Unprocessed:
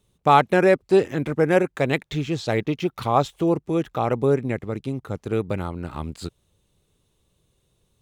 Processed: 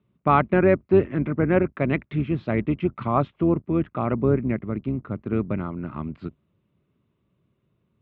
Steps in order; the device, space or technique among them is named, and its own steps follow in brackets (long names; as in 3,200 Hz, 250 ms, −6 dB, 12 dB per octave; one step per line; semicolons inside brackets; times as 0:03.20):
sub-octave bass pedal (sub-octave generator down 2 octaves, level −5 dB; loudspeaker in its box 74–2,200 Hz, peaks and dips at 84 Hz −9 dB, 220 Hz +4 dB, 480 Hz −9 dB, 810 Hz −10 dB, 1,700 Hz −6 dB)
level +1.5 dB